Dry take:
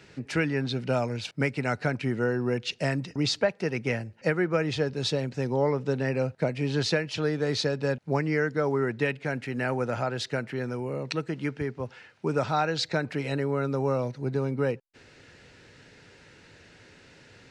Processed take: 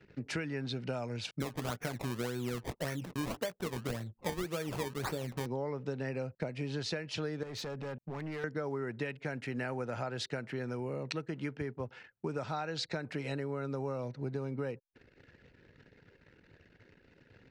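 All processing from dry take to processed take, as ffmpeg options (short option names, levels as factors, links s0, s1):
-filter_complex "[0:a]asettb=1/sr,asplit=3[s0][s1][s2];[s0]atrim=end=1.404[s3];[s1]atrim=start=1.4:end=5.46,asetpts=PTS-STARTPTS,afade=t=in:d=0.004:c=qsin,afade=t=out:st=4.056:d=0.004:c=qsin,asplit=2[s4][s5];[s5]adelay=17,volume=0.316[s6];[s4][s6]amix=inputs=2:normalize=0,atrim=end_sample=179046,acrusher=samples=22:mix=1:aa=0.000001:lfo=1:lforange=22:lforate=1.8[s7];[s2]atrim=start=5.456[s8];[s3][s7]acrossfade=d=0.004:c1=hsin:c2=qsin[s9];[s9][s8]acrossfade=d=0.004:c1=qsin:c2=hsin,asettb=1/sr,asplit=3[s10][s11][s12];[s10]atrim=end=7.434[s13];[s11]atrim=start=7.43:end=8.44,asetpts=PTS-STARTPTS,afade=t=in:d=0.004:c=qsin,afade=t=out:st=1.006:d=0.004:c=qsin,equalizer=f=4500:t=o:w=0.87:g=-6,acompressor=threshold=0.0251:ratio=3:attack=3.2:release=140:knee=1:detection=peak,asoftclip=type=hard:threshold=0.0224[s14];[s12]atrim=start=8.436[s15];[s13][s14]acrossfade=d=0.004:c1=hsin:c2=qsin[s16];[s16][s15]acrossfade=d=0.004:c1=qsin:c2=hsin,anlmdn=0.00398,acompressor=threshold=0.0316:ratio=6,volume=0.708"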